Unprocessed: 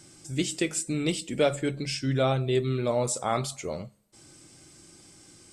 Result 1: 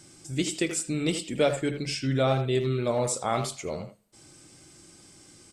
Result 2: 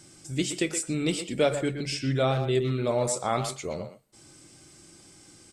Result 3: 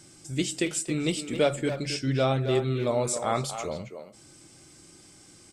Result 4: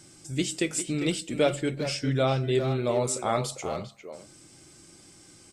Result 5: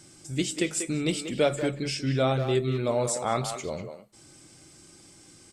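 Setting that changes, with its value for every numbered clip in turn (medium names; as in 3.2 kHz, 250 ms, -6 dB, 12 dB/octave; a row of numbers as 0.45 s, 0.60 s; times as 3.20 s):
speakerphone echo, time: 80 ms, 120 ms, 270 ms, 400 ms, 190 ms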